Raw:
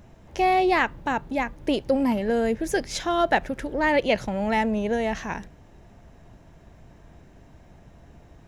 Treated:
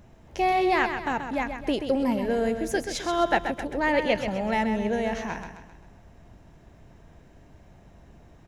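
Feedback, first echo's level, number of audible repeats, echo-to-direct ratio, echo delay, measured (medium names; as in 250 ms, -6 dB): 45%, -8.0 dB, 4, -7.0 dB, 131 ms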